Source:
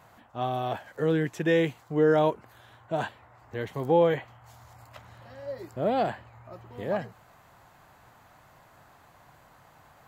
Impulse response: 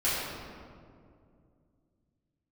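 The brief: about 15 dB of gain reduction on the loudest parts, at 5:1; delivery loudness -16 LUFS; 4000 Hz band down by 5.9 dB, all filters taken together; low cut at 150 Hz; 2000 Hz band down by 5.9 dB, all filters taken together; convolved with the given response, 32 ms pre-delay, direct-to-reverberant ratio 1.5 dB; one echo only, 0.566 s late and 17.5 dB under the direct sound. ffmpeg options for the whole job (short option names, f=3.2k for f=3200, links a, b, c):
-filter_complex "[0:a]highpass=150,equalizer=f=2k:t=o:g=-6.5,equalizer=f=4k:t=o:g=-5,acompressor=threshold=-35dB:ratio=5,aecho=1:1:566:0.133,asplit=2[a][b];[1:a]atrim=start_sample=2205,adelay=32[c];[b][c]afir=irnorm=-1:irlink=0,volume=-13dB[d];[a][d]amix=inputs=2:normalize=0,volume=22.5dB"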